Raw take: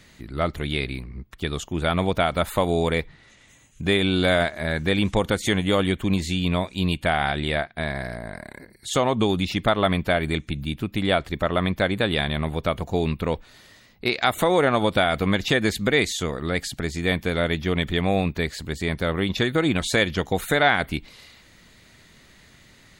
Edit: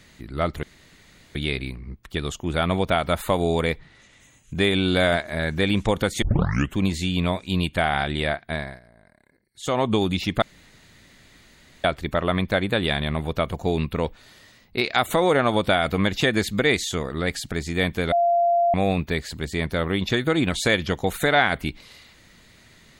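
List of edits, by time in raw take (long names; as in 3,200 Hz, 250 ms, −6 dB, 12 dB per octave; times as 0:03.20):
0:00.63: splice in room tone 0.72 s
0:05.50: tape start 0.53 s
0:07.82–0:09.08: duck −20 dB, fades 0.26 s
0:09.70–0:11.12: fill with room tone
0:17.40–0:18.02: beep over 690 Hz −16 dBFS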